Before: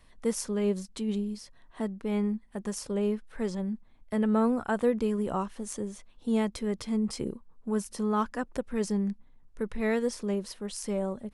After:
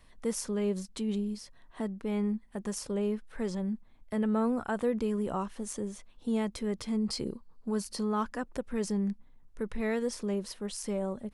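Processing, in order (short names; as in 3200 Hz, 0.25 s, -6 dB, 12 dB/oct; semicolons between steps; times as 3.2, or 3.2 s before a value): 7–8.05 bell 4500 Hz +13.5 dB 0.27 oct; in parallel at +0.5 dB: limiter -26 dBFS, peak gain reduction 11.5 dB; on the sum: gain -6.5 dB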